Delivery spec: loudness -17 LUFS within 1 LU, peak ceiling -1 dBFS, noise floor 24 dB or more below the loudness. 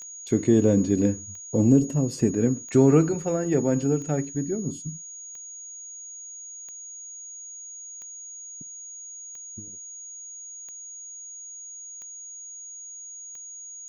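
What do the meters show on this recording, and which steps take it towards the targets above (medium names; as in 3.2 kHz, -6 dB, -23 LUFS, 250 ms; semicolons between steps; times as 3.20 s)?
clicks found 11; steady tone 6.7 kHz; tone level -38 dBFS; loudness -23.0 LUFS; peak level -7.5 dBFS; loudness target -17.0 LUFS
-> de-click; band-stop 6.7 kHz, Q 30; trim +6 dB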